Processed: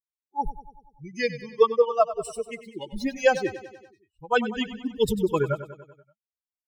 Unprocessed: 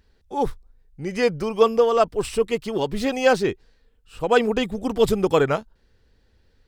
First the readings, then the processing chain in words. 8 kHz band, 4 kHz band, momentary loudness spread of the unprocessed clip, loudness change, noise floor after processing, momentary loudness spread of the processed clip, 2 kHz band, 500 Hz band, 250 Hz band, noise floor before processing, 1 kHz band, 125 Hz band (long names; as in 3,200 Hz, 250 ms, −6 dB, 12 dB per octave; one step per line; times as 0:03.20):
−4.5 dB, −5.0 dB, 10 LU, −4.0 dB, below −85 dBFS, 14 LU, −2.5 dB, −4.5 dB, −5.5 dB, −62 dBFS, −3.5 dB, −4.0 dB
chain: spectral dynamics exaggerated over time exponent 3
on a send: repeating echo 96 ms, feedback 59%, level −14 dB
on the sum: level +1.5 dB